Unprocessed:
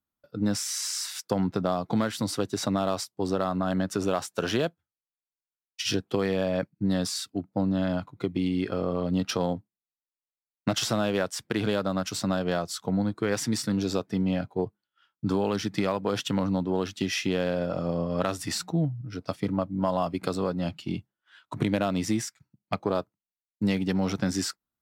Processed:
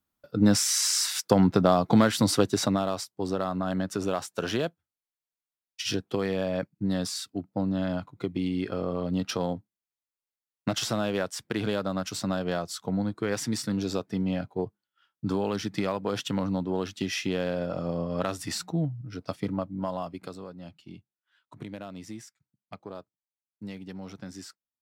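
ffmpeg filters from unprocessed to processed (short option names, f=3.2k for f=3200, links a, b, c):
-af "volume=6dB,afade=t=out:st=2.4:d=0.47:silence=0.398107,afade=t=out:st=19.43:d=1.02:silence=0.251189"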